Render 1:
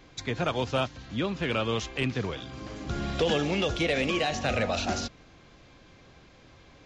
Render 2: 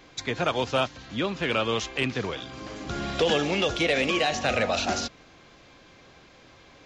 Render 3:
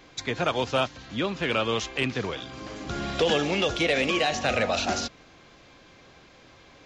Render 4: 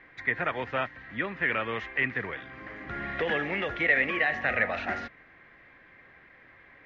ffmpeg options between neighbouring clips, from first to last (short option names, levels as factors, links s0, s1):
-af "lowshelf=f=200:g=-9,volume=1.58"
-af anull
-af "lowpass=f=1900:t=q:w=8.4,volume=0.422"